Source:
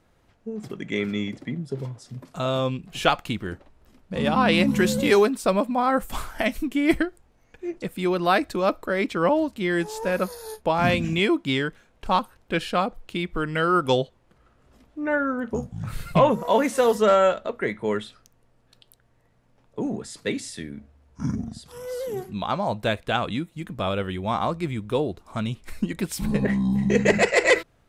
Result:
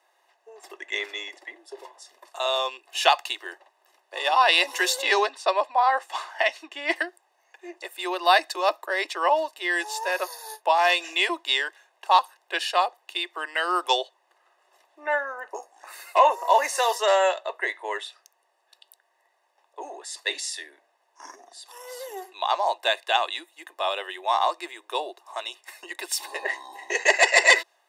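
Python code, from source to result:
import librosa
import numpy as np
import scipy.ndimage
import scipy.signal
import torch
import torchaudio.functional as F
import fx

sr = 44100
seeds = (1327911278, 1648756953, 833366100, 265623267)

y = fx.lowpass(x, sr, hz=4900.0, slope=12, at=(5.02, 6.96))
y = fx.peak_eq(y, sr, hz=3300.0, db=-10.5, octaves=0.27, at=(15.2, 16.8))
y = scipy.signal.sosfilt(scipy.signal.butter(12, 370.0, 'highpass', fs=sr, output='sos'), y)
y = y + 0.77 * np.pad(y, (int(1.1 * sr / 1000.0), 0))[:len(y)]
y = fx.dynamic_eq(y, sr, hz=5000.0, q=0.88, threshold_db=-41.0, ratio=4.0, max_db=6)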